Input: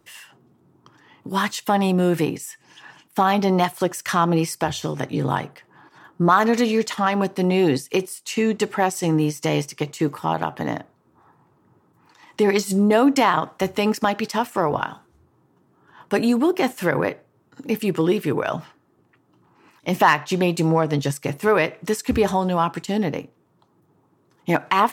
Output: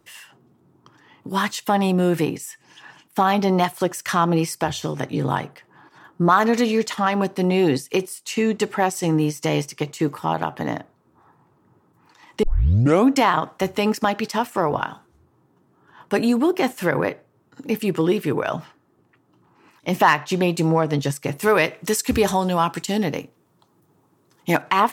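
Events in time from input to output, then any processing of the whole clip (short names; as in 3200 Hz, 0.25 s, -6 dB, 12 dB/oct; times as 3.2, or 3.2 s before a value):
12.43 tape start 0.67 s
21.39–24.62 high shelf 3400 Hz +9 dB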